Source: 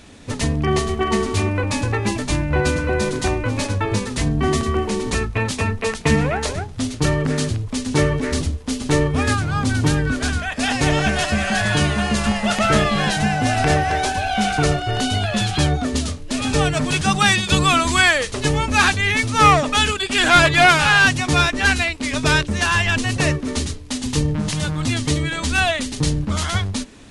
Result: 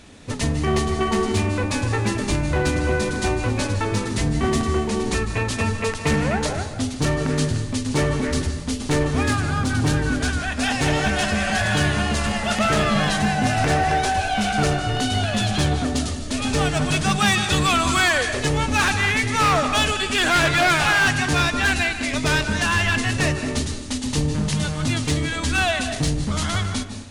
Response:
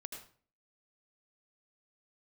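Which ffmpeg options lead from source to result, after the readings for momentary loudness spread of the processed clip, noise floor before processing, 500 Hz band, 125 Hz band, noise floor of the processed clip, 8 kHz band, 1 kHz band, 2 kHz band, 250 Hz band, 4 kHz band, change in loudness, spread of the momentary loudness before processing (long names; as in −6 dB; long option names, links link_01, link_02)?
6 LU, −32 dBFS, −2.0 dB, −2.0 dB, −30 dBFS, −1.5 dB, −2.5 dB, −2.5 dB, −1.5 dB, −2.5 dB, −2.5 dB, 9 LU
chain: -filter_complex "[0:a]volume=13dB,asoftclip=hard,volume=-13dB,asplit=2[link_01][link_02];[1:a]atrim=start_sample=2205,asetrate=22491,aresample=44100[link_03];[link_02][link_03]afir=irnorm=-1:irlink=0,volume=0dB[link_04];[link_01][link_04]amix=inputs=2:normalize=0,volume=-7dB"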